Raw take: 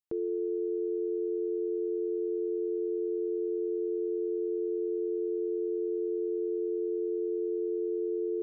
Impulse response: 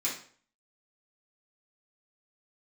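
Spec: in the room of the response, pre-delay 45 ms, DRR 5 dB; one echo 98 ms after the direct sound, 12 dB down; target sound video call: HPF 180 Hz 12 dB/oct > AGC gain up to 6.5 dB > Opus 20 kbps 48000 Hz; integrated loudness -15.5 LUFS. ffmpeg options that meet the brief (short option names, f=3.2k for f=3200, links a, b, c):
-filter_complex "[0:a]aecho=1:1:98:0.251,asplit=2[a][b];[1:a]atrim=start_sample=2205,adelay=45[c];[b][c]afir=irnorm=-1:irlink=0,volume=-10.5dB[d];[a][d]amix=inputs=2:normalize=0,highpass=180,dynaudnorm=m=6.5dB,volume=14.5dB" -ar 48000 -c:a libopus -b:a 20k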